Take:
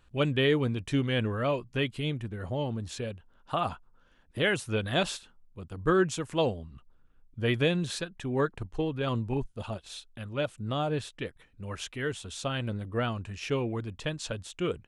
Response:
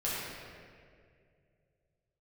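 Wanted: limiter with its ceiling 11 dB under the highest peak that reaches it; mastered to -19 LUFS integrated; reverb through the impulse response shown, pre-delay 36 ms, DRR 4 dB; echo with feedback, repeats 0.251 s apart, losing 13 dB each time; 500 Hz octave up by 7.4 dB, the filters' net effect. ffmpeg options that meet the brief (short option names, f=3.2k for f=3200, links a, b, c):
-filter_complex "[0:a]equalizer=f=500:t=o:g=9,alimiter=limit=-20dB:level=0:latency=1,aecho=1:1:251|502|753:0.224|0.0493|0.0108,asplit=2[a][b];[1:a]atrim=start_sample=2205,adelay=36[c];[b][c]afir=irnorm=-1:irlink=0,volume=-11dB[d];[a][d]amix=inputs=2:normalize=0,volume=10dB"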